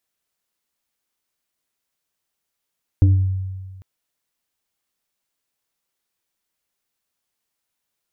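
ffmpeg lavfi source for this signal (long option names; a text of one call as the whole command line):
ffmpeg -f lavfi -i "aevalsrc='0.398*pow(10,-3*t/1.57)*sin(2*PI*94.6*t+0.61*pow(10,-3*t/0.6)*sin(2*PI*2.1*94.6*t))':duration=0.8:sample_rate=44100" out.wav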